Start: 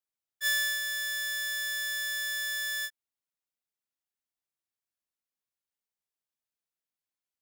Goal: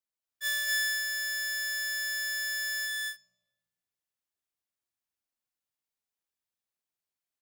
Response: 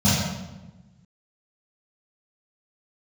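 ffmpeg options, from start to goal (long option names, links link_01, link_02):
-filter_complex "[0:a]aecho=1:1:230.3|271.1:0.891|0.447,asplit=2[link_01][link_02];[1:a]atrim=start_sample=2205[link_03];[link_02][link_03]afir=irnorm=-1:irlink=0,volume=-39dB[link_04];[link_01][link_04]amix=inputs=2:normalize=0,volume=-3dB"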